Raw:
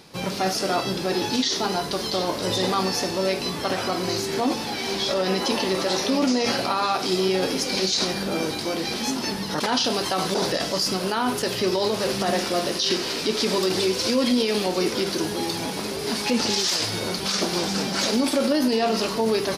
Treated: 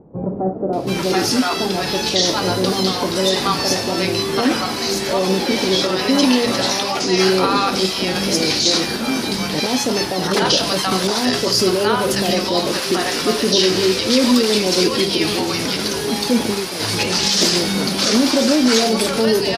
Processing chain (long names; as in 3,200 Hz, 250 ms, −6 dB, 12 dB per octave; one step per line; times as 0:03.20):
multiband delay without the direct sound lows, highs 730 ms, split 720 Hz
level +7 dB